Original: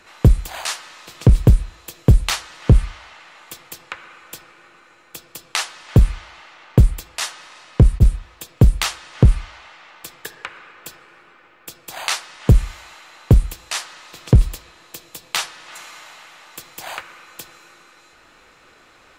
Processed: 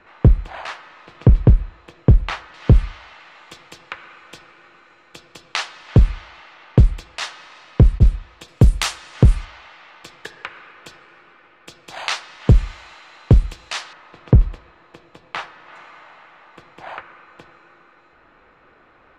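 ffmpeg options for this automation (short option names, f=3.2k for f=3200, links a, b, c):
-af "asetnsamples=n=441:p=0,asendcmd='2.54 lowpass f 4500;8.48 lowpass f 11000;9.45 lowpass f 4800;13.93 lowpass f 1800',lowpass=2.1k"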